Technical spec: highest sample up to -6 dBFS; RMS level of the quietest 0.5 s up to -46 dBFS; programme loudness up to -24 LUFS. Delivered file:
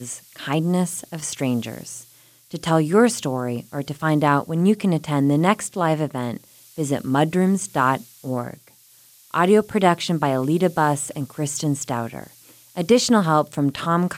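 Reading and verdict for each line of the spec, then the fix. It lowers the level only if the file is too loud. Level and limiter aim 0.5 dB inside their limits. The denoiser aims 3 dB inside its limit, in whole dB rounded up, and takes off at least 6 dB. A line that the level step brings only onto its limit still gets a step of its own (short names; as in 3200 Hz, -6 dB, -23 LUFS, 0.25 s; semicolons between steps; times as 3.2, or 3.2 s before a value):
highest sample -4.5 dBFS: fail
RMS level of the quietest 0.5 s -52 dBFS: OK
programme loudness -21.0 LUFS: fail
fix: gain -3.5 dB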